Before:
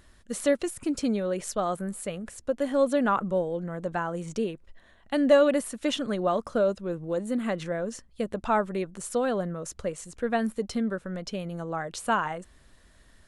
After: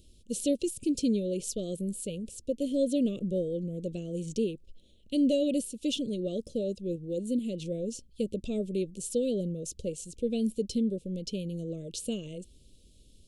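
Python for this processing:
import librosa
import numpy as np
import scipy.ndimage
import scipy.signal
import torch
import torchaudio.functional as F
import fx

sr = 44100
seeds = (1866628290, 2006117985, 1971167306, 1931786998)

y = fx.tremolo_shape(x, sr, shape='saw_up', hz=2.3, depth_pct=35, at=(5.3, 7.63), fade=0.02)
y = scipy.signal.sosfilt(scipy.signal.cheby2(4, 40, [760.0, 1900.0], 'bandstop', fs=sr, output='sos'), y)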